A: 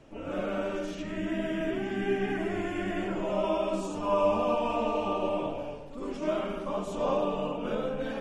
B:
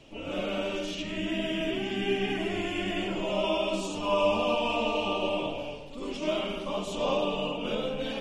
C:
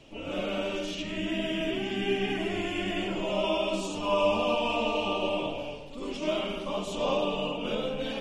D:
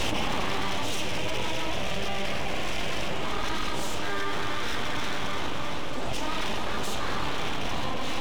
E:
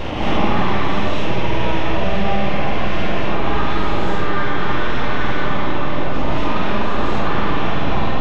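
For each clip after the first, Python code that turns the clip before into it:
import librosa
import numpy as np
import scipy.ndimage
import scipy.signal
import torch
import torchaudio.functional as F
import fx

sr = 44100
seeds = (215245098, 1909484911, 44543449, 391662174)

y1 = fx.curve_eq(x, sr, hz=(1000.0, 1600.0, 2900.0, 6200.0, 9200.0), db=(0, -4, 12, 6, 4))
y2 = y1
y3 = np.abs(y2)
y3 = fx.echo_feedback(y3, sr, ms=314, feedback_pct=56, wet_db=-12.0)
y3 = fx.env_flatten(y3, sr, amount_pct=100)
y3 = y3 * librosa.db_to_amplitude(-4.0)
y4 = fx.spacing_loss(y3, sr, db_at_10k=33)
y4 = fx.doubler(y4, sr, ms=49.0, db=-4)
y4 = fx.rev_gated(y4, sr, seeds[0], gate_ms=290, shape='rising', drr_db=-7.0)
y4 = y4 * librosa.db_to_amplitude(5.0)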